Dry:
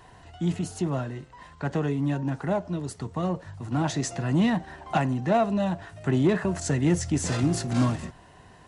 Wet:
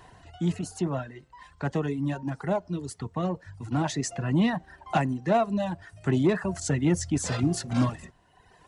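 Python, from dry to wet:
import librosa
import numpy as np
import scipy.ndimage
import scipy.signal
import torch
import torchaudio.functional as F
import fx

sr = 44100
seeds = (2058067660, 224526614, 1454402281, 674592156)

y = fx.dereverb_blind(x, sr, rt60_s=1.2)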